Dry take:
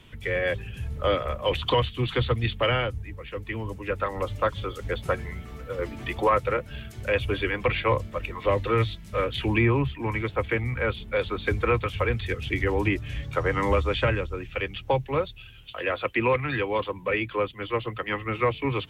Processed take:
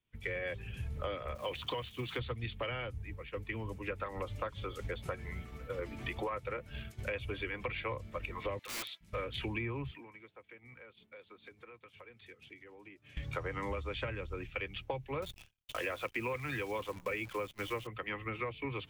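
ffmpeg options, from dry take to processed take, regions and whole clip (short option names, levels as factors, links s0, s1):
-filter_complex "[0:a]asettb=1/sr,asplit=3[s0][s1][s2];[s0]atrim=end=1.354[s3];[s1]atrim=start=1.35:end=2.19,asetpts=PTS-STARTPTS,afade=t=in:d=0.004:c=qsin,afade=t=out:st=0.836:d=0.004:c=qsin,highpass=f=140:p=1,acrusher=bits=9:dc=4:mix=0:aa=0.000001[s4];[s2]atrim=start=2.186[s5];[s3][s4]acrossfade=d=0.004:c1=hsin:c2=qsin[s6];[s6][s5]acrossfade=d=0.004:c1=qsin:c2=hsin,asettb=1/sr,asplit=3[s7][s8][s9];[s7]atrim=end=8.594[s10];[s8]atrim=start=8.59:end=9.01,asetpts=PTS-STARTPTS,afade=t=in:d=0.004:c=qsin,afade=t=out:st=0.416:d=0.004:c=qsin,highpass=920,aeval=exprs='(mod(26.6*val(0)+1,2)-1)/26.6':c=same[s11];[s9]atrim=start=9.006[s12];[s10][s11]acrossfade=d=0.004:c1=hsin:c2=qsin[s13];[s13][s12]acrossfade=d=0.004:c1=qsin:c2=hsin,asettb=1/sr,asplit=3[s14][s15][s16];[s14]atrim=end=9.914[s17];[s15]atrim=start=9.91:end=13.17,asetpts=PTS-STARTPTS,afade=t=in:d=0.004:c=qsin,afade=t=out:st=3.256:d=0.004:c=qsin,highpass=190,acompressor=threshold=0.0126:ratio=16:attack=3.2:release=140:knee=1:detection=peak[s18];[s16]atrim=start=13.166[s19];[s17][s18]acrossfade=d=0.004:c1=hsin:c2=qsin[s20];[s20][s19]acrossfade=d=0.004:c1=qsin:c2=hsin,asettb=1/sr,asplit=3[s21][s22][s23];[s21]atrim=end=15.224[s24];[s22]atrim=start=15.22:end=17.87,asetpts=PTS-STARTPTS,afade=t=in:d=0.004:c=qsin,afade=t=out:st=2.646:d=0.004:c=qsin,agate=range=0.0224:threshold=0.00891:ratio=3:release=100:detection=peak,acontrast=42,acrusher=bits=7:dc=4:mix=0:aa=0.000001[s25];[s23]atrim=start=17.866[s26];[s24][s25]acrossfade=d=0.004:c1=hsin:c2=qsin[s27];[s27][s26]acrossfade=d=0.004:c1=qsin:c2=hsin,agate=range=0.0224:threshold=0.02:ratio=3:detection=peak,equalizer=f=2300:w=6.9:g=4.5,acompressor=threshold=0.0251:ratio=6,volume=0.668"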